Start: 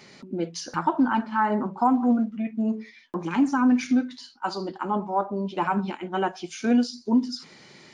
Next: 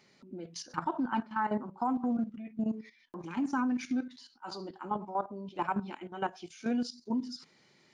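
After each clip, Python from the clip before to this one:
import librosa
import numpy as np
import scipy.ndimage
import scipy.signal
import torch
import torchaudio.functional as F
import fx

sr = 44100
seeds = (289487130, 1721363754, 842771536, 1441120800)

y = fx.level_steps(x, sr, step_db=12)
y = y * librosa.db_to_amplitude(-5.0)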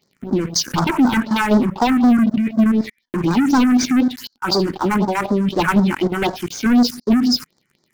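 y = fx.leveller(x, sr, passes=5)
y = fx.phaser_stages(y, sr, stages=4, low_hz=590.0, high_hz=2700.0, hz=4.0, feedback_pct=25)
y = y * librosa.db_to_amplitude(8.5)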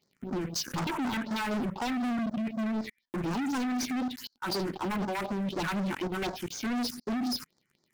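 y = np.clip(x, -10.0 ** (-20.0 / 20.0), 10.0 ** (-20.0 / 20.0))
y = y * librosa.db_to_amplitude(-9.0)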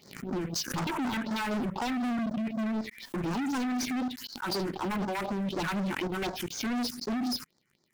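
y = fx.pre_swell(x, sr, db_per_s=100.0)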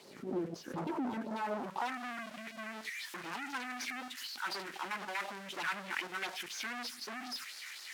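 y = x + 0.5 * 10.0 ** (-25.5 / 20.0) * np.diff(np.sign(x), prepend=np.sign(x[:1]))
y = fx.filter_sweep_bandpass(y, sr, from_hz=450.0, to_hz=1800.0, start_s=1.19, end_s=2.12, q=1.2)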